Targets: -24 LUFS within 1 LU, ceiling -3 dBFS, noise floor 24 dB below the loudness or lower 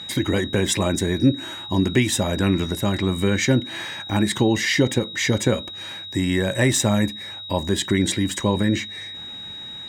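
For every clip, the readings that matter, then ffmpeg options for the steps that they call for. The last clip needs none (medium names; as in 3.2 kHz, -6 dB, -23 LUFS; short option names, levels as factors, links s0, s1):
steady tone 3.8 kHz; tone level -33 dBFS; loudness -21.5 LUFS; peak level -4.5 dBFS; loudness target -24.0 LUFS
-> -af "bandreject=f=3800:w=30"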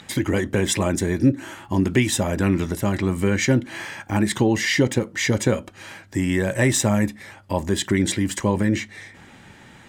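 steady tone not found; loudness -22.0 LUFS; peak level -5.0 dBFS; loudness target -24.0 LUFS
-> -af "volume=0.794"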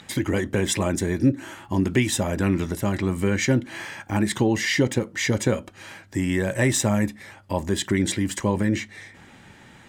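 loudness -24.0 LUFS; peak level -7.0 dBFS; noise floor -49 dBFS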